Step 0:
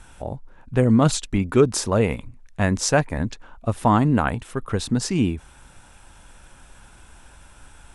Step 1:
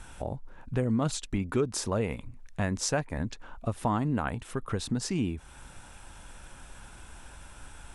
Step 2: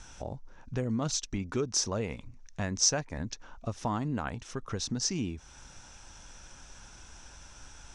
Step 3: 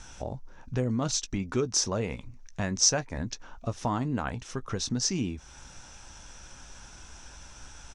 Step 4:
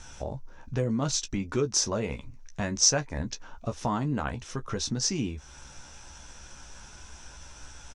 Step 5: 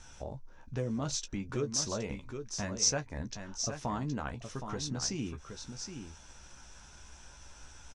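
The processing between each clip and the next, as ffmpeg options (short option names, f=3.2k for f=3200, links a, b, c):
-af "acompressor=threshold=-33dB:ratio=2"
-af "lowpass=f=5.9k:t=q:w=5.5,volume=-4dB"
-filter_complex "[0:a]asplit=2[a][b];[b]adelay=16,volume=-13dB[c];[a][c]amix=inputs=2:normalize=0,volume=2.5dB"
-filter_complex "[0:a]asplit=2[a][b];[b]adelay=14,volume=-7.5dB[c];[a][c]amix=inputs=2:normalize=0"
-af "aecho=1:1:769:0.398,volume=-6.5dB"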